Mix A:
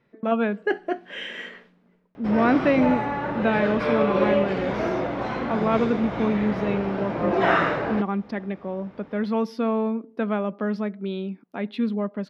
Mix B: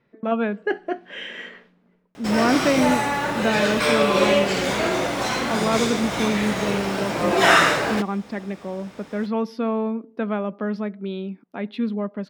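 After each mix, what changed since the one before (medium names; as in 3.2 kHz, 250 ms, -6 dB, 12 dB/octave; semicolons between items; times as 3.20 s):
background: remove tape spacing loss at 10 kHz 43 dB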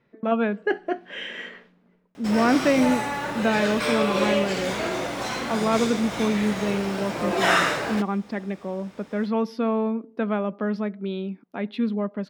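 background -5.0 dB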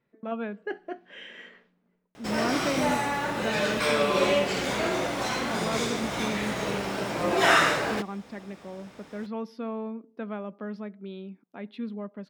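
speech -10.0 dB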